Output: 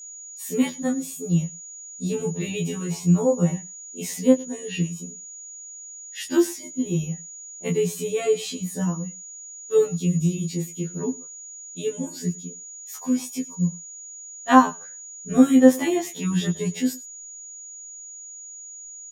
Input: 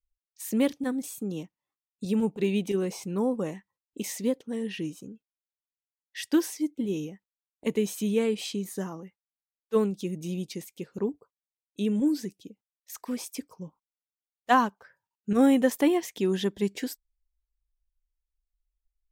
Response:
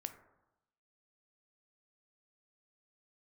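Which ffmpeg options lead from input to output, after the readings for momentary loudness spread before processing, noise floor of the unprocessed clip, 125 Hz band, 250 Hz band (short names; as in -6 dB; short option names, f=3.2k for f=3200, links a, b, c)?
18 LU, under -85 dBFS, +11.5 dB, +5.0 dB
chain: -af "equalizer=f=160:t=o:w=0.47:g=13,flanger=delay=15.5:depth=4.5:speed=0.23,aeval=exprs='val(0)+0.00355*sin(2*PI*6800*n/s)':c=same,aecho=1:1:102:0.0841,afftfilt=real='re*2*eq(mod(b,4),0)':imag='im*2*eq(mod(b,4),0)':win_size=2048:overlap=0.75,volume=8.5dB"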